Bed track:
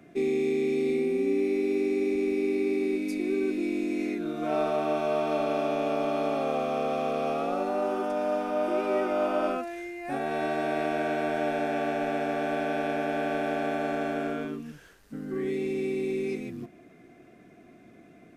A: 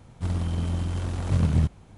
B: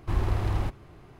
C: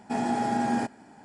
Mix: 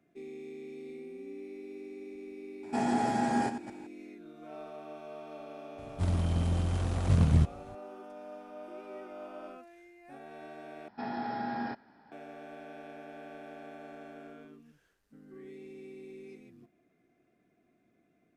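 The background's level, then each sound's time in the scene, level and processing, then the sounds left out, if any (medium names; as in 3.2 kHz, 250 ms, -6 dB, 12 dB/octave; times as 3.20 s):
bed track -18 dB
2.63 s: add C -2 dB + chunks repeated in reverse 119 ms, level -10.5 dB
5.78 s: add A -2 dB
10.88 s: replace with C -4.5 dB + rippled Chebyshev low-pass 5.4 kHz, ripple 6 dB
not used: B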